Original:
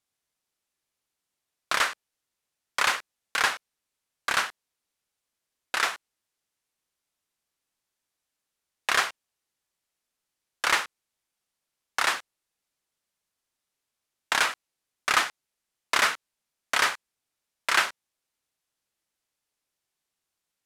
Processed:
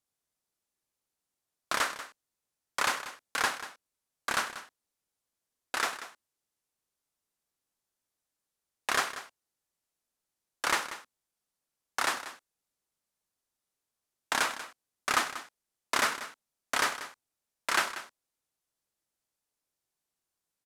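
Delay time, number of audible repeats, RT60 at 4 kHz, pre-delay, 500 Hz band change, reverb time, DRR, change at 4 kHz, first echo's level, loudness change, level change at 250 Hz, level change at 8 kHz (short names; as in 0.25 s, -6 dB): 0.188 s, 1, none, none, -1.5 dB, none, none, -5.5 dB, -13.5 dB, -5.0 dB, +1.0 dB, -3.0 dB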